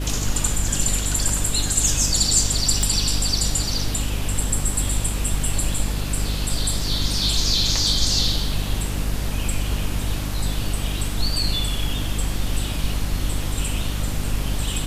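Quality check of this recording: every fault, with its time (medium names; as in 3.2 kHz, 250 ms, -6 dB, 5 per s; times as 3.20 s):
hum 50 Hz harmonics 6 -26 dBFS
2.83 s: pop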